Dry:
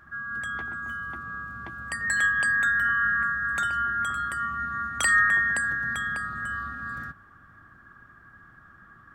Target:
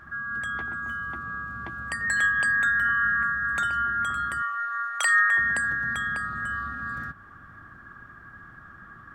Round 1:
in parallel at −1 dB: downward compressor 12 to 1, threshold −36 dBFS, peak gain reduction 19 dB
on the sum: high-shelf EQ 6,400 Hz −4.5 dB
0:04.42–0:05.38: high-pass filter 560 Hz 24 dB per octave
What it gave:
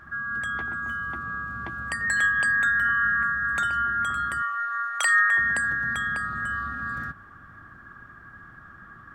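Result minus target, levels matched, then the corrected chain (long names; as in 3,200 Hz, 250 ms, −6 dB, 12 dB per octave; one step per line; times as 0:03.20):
downward compressor: peak gain reduction −6 dB
in parallel at −1 dB: downward compressor 12 to 1, threshold −42.5 dBFS, peak gain reduction 25 dB
on the sum: high-shelf EQ 6,400 Hz −4.5 dB
0:04.42–0:05.38: high-pass filter 560 Hz 24 dB per octave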